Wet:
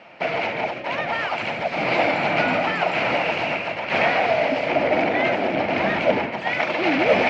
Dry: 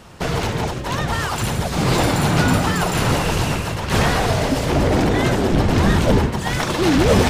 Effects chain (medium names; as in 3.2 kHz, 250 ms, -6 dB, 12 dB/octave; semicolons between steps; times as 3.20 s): cabinet simulation 360–3700 Hz, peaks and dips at 410 Hz -8 dB, 650 Hz +7 dB, 1.1 kHz -7 dB, 1.6 kHz -3 dB, 2.3 kHz +10 dB, 3.6 kHz -8 dB